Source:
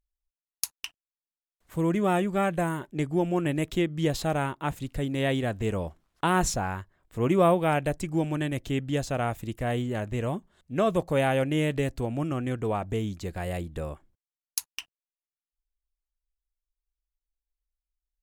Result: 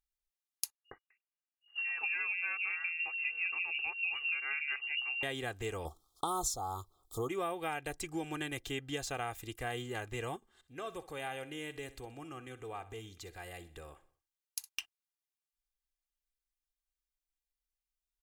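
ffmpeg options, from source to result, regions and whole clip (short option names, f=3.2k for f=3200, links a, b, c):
-filter_complex "[0:a]asettb=1/sr,asplit=3[a][b][c];[a]atrim=end=0.724[d];[b]atrim=start=0.72:end=5.23,asetpts=PTS-STARTPTS,afade=t=in:d=0.004:c=qsin,afade=t=out:st=4.506:d=0.004:c=qsin,acrossover=split=150|710[e][f][g];[g]adelay=70[h];[f]adelay=260[i];[e][i][h]amix=inputs=3:normalize=0,atrim=end_sample=198891,lowpass=f=2.5k:t=q:w=0.5098,lowpass=f=2.5k:t=q:w=0.6013,lowpass=f=2.5k:t=q:w=0.9,lowpass=f=2.5k:t=q:w=2.563,afreqshift=-2900[j];[c]atrim=start=5.226[k];[d][j]acrossfade=d=0.004:c1=hsin:c2=qsin[l];[l][k]acrossfade=d=0.004:c1=qsin:c2=hsin,asettb=1/sr,asplit=3[m][n][o];[m]atrim=end=5.854[p];[n]atrim=start=5.85:end=7.29,asetpts=PTS-STARTPTS,afade=t=in:d=0.004:c=qsin,afade=t=out:st=1.436:d=0.004:c=qsin,highshelf=f=7.7k:g=6.5,acontrast=26,asuperstop=centerf=2100:order=20:qfactor=1.1[q];[o]atrim=start=7.286[r];[p][q]acrossfade=d=0.004:c1=hsin:c2=qsin[s];[s][r]acrossfade=d=0.004:c1=qsin:c2=hsin,asettb=1/sr,asplit=3[t][u][v];[t]atrim=end=10.364[w];[u]atrim=start=10.36:end=14.69,asetpts=PTS-STARTPTS,afade=t=in:d=0.004:c=qsin,afade=t=out:st=4.326:d=0.004:c=qsin,acompressor=threshold=-48dB:ratio=1.5:attack=3.2:release=140:knee=1:detection=peak,aecho=1:1:62|124|186|248:0.158|0.0729|0.0335|0.0154,atrim=end_sample=190953[x];[v]atrim=start=14.686[y];[w][x]acrossfade=d=0.004:c1=hsin:c2=qsin[z];[z][y]acrossfade=d=0.004:c1=qsin:c2=hsin,tiltshelf=f=720:g=-6,aecho=1:1:2.5:0.6,acompressor=threshold=-26dB:ratio=6,volume=-7dB"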